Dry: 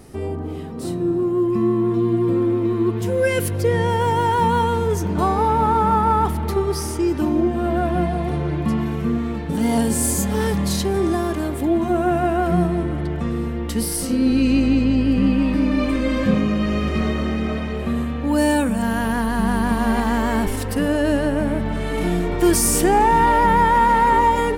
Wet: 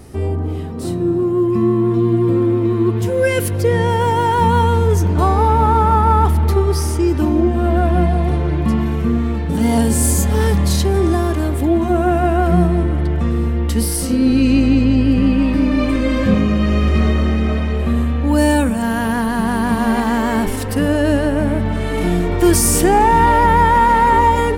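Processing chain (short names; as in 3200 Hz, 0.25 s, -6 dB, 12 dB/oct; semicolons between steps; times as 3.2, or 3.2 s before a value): bell 79 Hz +8 dB 1.1 oct; notches 50/100/150/200 Hz; gain +3 dB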